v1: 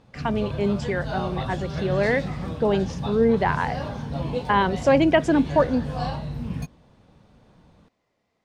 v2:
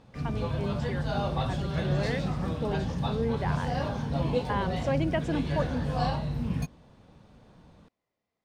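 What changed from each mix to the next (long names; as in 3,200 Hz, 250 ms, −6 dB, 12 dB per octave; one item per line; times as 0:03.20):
speech −11.5 dB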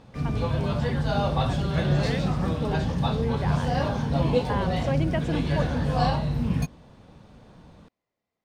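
background +5.0 dB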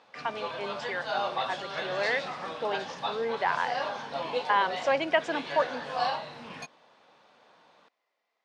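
speech +9.0 dB
master: add band-pass filter 720–5,300 Hz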